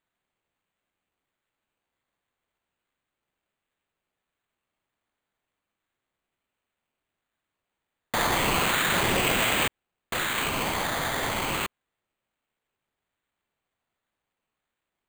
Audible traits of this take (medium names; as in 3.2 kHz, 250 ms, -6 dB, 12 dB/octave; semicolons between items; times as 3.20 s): phasing stages 8, 0.34 Hz, lowest notch 370–1500 Hz; aliases and images of a low sample rate 5.4 kHz, jitter 0%